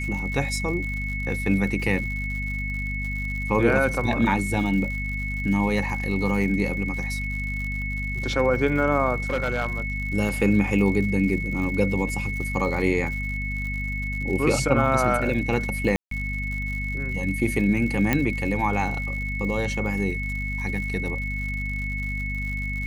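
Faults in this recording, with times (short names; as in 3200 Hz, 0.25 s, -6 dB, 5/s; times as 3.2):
crackle 110/s -33 dBFS
hum 50 Hz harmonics 5 -30 dBFS
tone 2200 Hz -30 dBFS
9.3–9.8 clipped -19.5 dBFS
15.96–16.11 gap 0.153 s
18.13 pop -7 dBFS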